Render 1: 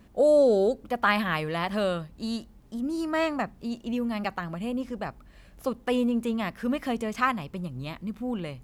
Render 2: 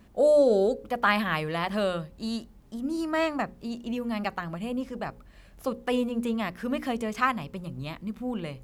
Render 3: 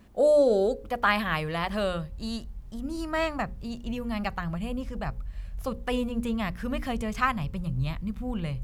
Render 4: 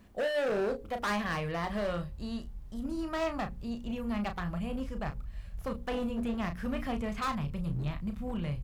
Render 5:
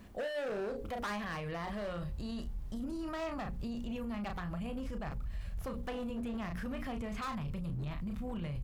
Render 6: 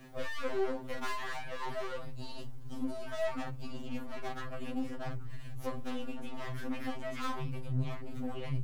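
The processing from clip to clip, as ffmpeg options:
-af "bandreject=f=60:t=h:w=6,bandreject=f=120:t=h:w=6,bandreject=f=180:t=h:w=6,bandreject=f=240:t=h:w=6,bandreject=f=300:t=h:w=6,bandreject=f=360:t=h:w=6,bandreject=f=420:t=h:w=6,bandreject=f=480:t=h:w=6,bandreject=f=540:t=h:w=6"
-af "asubboost=boost=10:cutoff=98"
-filter_complex "[0:a]acrossover=split=3000[s0][s1];[s1]acompressor=threshold=0.00251:ratio=4:attack=1:release=60[s2];[s0][s2]amix=inputs=2:normalize=0,volume=20,asoftclip=hard,volume=0.0501,asplit=2[s3][s4];[s4]adelay=34,volume=0.398[s5];[s3][s5]amix=inputs=2:normalize=0,volume=0.708"
-af "alimiter=level_in=4.47:limit=0.0631:level=0:latency=1:release=16,volume=0.224,volume=1.58"
-af "aeval=exprs='clip(val(0),-1,0.00282)':c=same,afftfilt=real='re*2.45*eq(mod(b,6),0)':imag='im*2.45*eq(mod(b,6),0)':win_size=2048:overlap=0.75,volume=2.11"

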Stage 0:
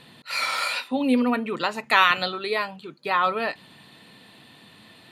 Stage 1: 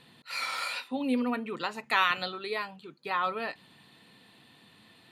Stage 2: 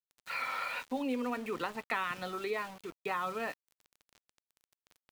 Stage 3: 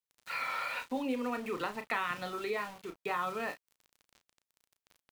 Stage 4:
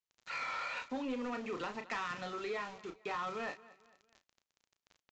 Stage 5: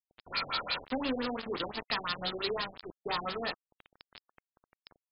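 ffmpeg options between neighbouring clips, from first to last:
-af "bandreject=f=610:w=12,volume=0.422"
-filter_complex "[0:a]bass=f=250:g=-4,treble=f=4000:g=-12,acrossover=split=270|2900[s0][s1][s2];[s0]acompressor=threshold=0.00398:ratio=4[s3];[s1]acompressor=threshold=0.0126:ratio=4[s4];[s2]acompressor=threshold=0.00141:ratio=4[s5];[s3][s4][s5]amix=inputs=3:normalize=0,aeval=exprs='val(0)*gte(abs(val(0)),0.00316)':c=same,volume=1.58"
-filter_complex "[0:a]asplit=2[s0][s1];[s1]adelay=34,volume=0.355[s2];[s0][s2]amix=inputs=2:normalize=0"
-af "aecho=1:1:225|450|675:0.0794|0.0318|0.0127,aresample=16000,asoftclip=type=tanh:threshold=0.0299,aresample=44100,volume=0.841"
-filter_complex "[0:a]acrossover=split=670[s0][s1];[s1]aexciter=amount=10.7:drive=4.4:freq=3400[s2];[s0][s2]amix=inputs=2:normalize=0,acrusher=bits=5:mix=0:aa=0.000001,afftfilt=real='re*lt(b*sr/1024,730*pow(5300/730,0.5+0.5*sin(2*PI*5.8*pts/sr)))':imag='im*lt(b*sr/1024,730*pow(5300/730,0.5+0.5*sin(2*PI*5.8*pts/sr)))':win_size=1024:overlap=0.75,volume=1.68"

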